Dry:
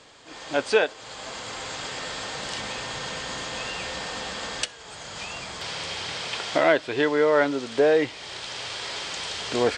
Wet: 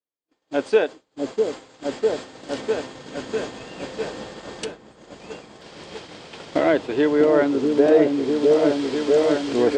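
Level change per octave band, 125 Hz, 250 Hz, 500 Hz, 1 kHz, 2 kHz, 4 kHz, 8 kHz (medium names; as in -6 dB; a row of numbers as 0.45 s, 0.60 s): +2.5 dB, +9.5 dB, +5.5 dB, -1.0 dB, -4.0 dB, -6.5 dB, -7.0 dB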